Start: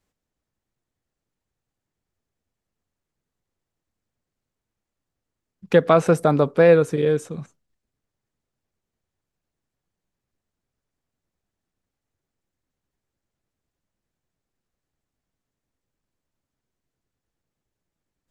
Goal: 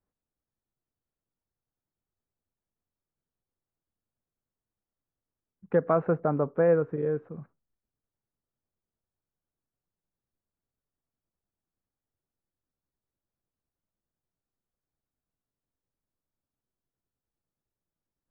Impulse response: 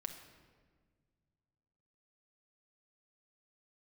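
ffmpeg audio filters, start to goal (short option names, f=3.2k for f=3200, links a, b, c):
-af "lowpass=f=1.6k:w=0.5412,lowpass=f=1.6k:w=1.3066,volume=-8.5dB"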